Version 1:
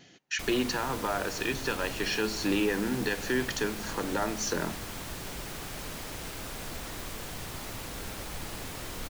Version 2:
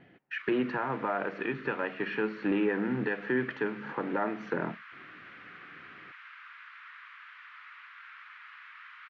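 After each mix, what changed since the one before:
background: add steep high-pass 1200 Hz 48 dB/oct; master: add LPF 2200 Hz 24 dB/oct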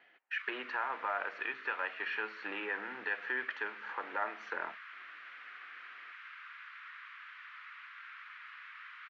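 master: add HPF 950 Hz 12 dB/oct

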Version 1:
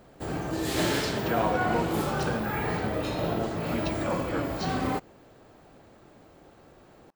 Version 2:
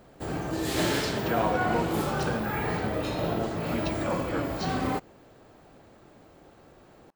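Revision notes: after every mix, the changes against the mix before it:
none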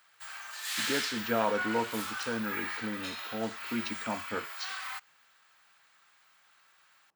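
background: add HPF 1300 Hz 24 dB/oct

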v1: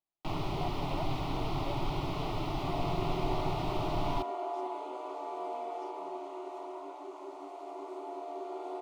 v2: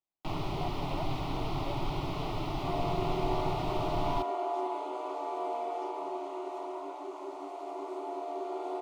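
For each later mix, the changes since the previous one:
second sound +3.5 dB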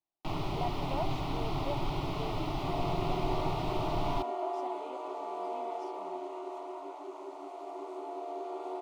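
speech +5.5 dB; second sound: send -10.5 dB

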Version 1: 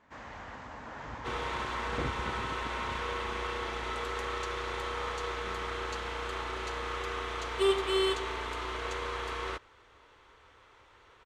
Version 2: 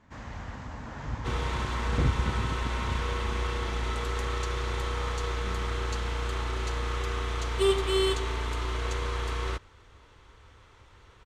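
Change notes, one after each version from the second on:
master: add tone controls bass +13 dB, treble +6 dB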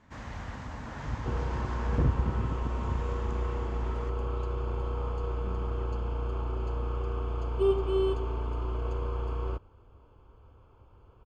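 second sound: add running mean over 23 samples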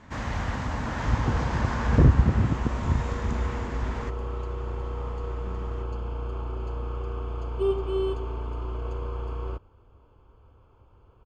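first sound +10.0 dB

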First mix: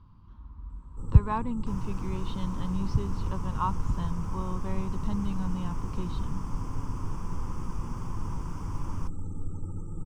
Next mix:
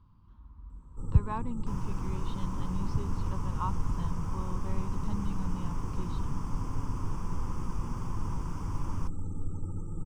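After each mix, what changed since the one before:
speech -5.5 dB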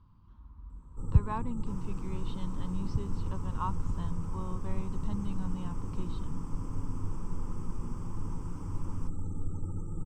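second sound -8.0 dB

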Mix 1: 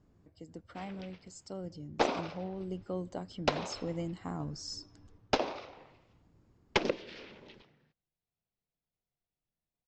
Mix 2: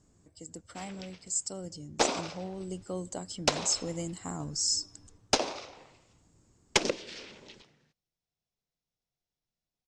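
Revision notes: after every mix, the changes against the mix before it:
master: remove air absorption 240 m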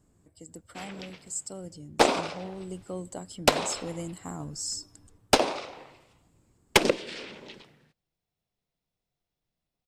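background +7.0 dB; master: remove synth low-pass 6300 Hz, resonance Q 2.6

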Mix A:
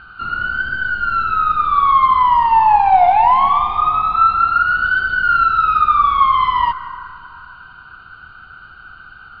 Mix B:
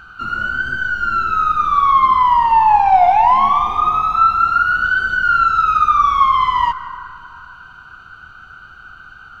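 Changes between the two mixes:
speech +7.0 dB; background: remove steep low-pass 4800 Hz 72 dB/oct

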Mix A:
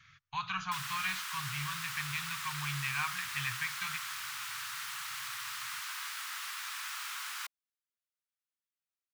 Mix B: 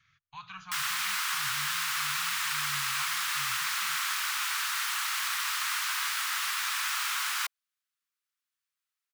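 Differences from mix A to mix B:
speech -8.0 dB; background +9.5 dB

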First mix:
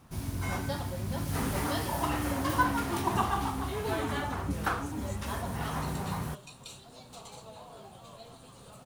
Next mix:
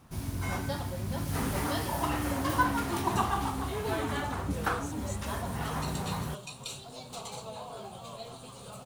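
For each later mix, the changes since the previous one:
second sound +6.5 dB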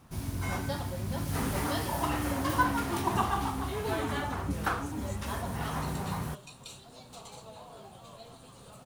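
second sound -6.5 dB

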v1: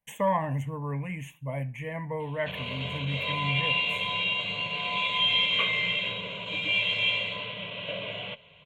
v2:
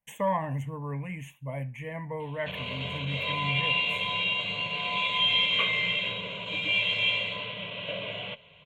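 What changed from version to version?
speech: send off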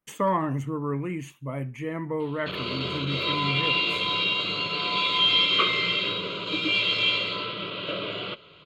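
master: remove fixed phaser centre 1300 Hz, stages 6

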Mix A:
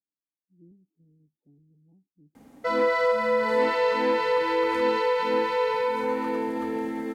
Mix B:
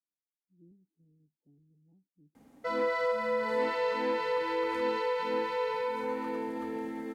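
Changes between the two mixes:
speech -5.0 dB; background -7.0 dB

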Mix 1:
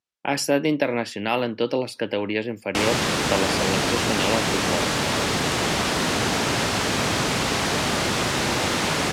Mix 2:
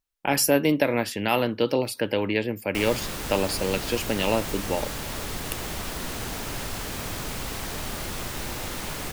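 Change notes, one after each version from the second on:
background -12.0 dB; master: remove BPF 120–6900 Hz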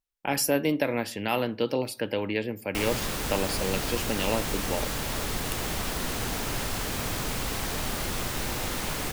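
speech -6.0 dB; reverb: on, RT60 0.55 s

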